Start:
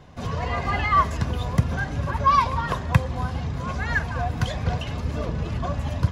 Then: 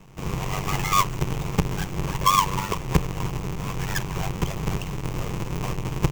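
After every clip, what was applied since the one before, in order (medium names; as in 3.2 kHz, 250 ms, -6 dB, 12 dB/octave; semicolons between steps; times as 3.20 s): square wave that keeps the level; ring modulator 48 Hz; rippled EQ curve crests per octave 0.74, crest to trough 7 dB; trim -3.5 dB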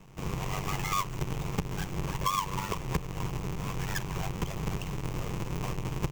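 compression 2.5:1, threshold -25 dBFS, peak gain reduction 9 dB; trim -4 dB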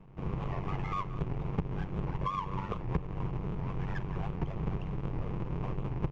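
tape spacing loss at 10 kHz 43 dB; delay 178 ms -16.5 dB; warped record 78 rpm, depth 160 cents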